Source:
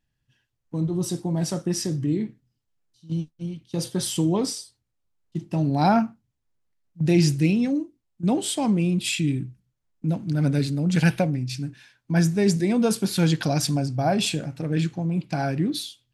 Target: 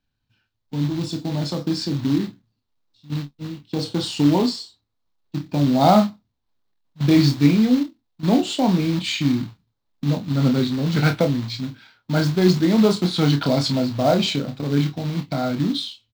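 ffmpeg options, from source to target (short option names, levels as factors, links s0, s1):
-filter_complex "[0:a]highshelf=f=2100:g=-3,asetrate=40440,aresample=44100,atempo=1.09051,acrossover=split=270|1500[s0][s1][s2];[s1]dynaudnorm=f=380:g=9:m=1.78[s3];[s0][s3][s2]amix=inputs=3:normalize=0,acrusher=bits=4:mode=log:mix=0:aa=0.000001,equalizer=f=250:t=o:w=0.67:g=5,equalizer=f=1000:t=o:w=0.67:g=5,equalizer=f=4000:t=o:w=0.67:g=10,equalizer=f=10000:t=o:w=0.67:g=-11,asplit=2[s4][s5];[s5]aecho=0:1:28|49:0.447|0.158[s6];[s4][s6]amix=inputs=2:normalize=0,volume=0.841"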